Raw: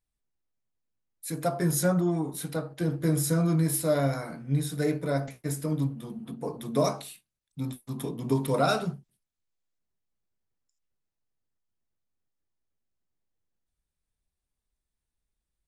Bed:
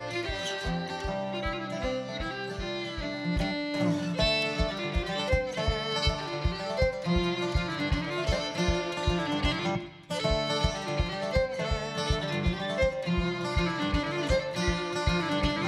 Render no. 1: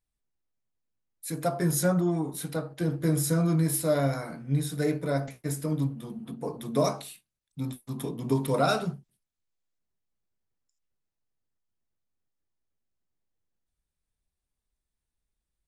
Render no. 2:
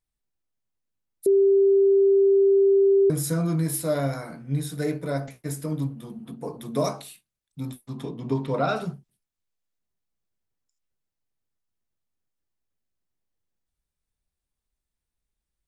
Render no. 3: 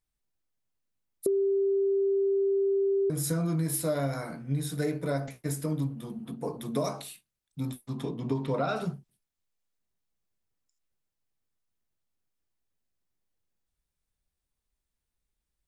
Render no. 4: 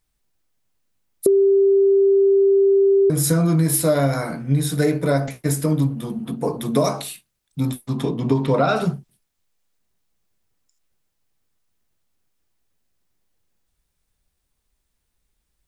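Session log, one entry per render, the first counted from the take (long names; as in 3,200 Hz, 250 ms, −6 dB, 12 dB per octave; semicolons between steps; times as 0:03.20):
no processing that can be heard
0:01.26–0:03.10: beep over 393 Hz −14.5 dBFS; 0:07.86–0:08.75: low-pass filter 6,500 Hz → 3,100 Hz
downward compressor, threshold −25 dBFS, peak gain reduction 8 dB
level +11 dB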